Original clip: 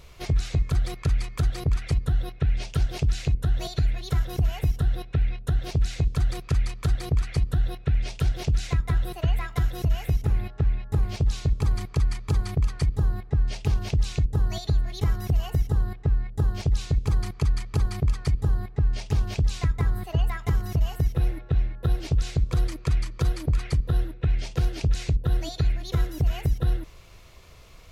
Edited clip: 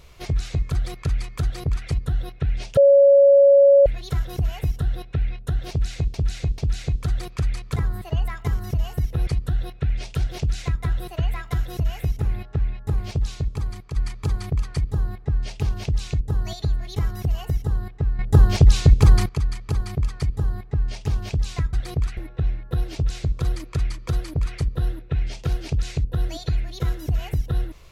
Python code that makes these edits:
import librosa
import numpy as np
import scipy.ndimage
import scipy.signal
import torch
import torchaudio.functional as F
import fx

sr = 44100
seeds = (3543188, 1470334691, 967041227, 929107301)

y = fx.edit(x, sr, fx.bleep(start_s=2.77, length_s=1.09, hz=559.0, db=-9.0),
    fx.repeat(start_s=5.7, length_s=0.44, count=3),
    fx.swap(start_s=6.88, length_s=0.44, other_s=19.78, other_length_s=1.51),
    fx.fade_out_to(start_s=11.2, length_s=0.81, floor_db=-7.5),
    fx.clip_gain(start_s=16.24, length_s=1.1, db=10.5), tone=tone)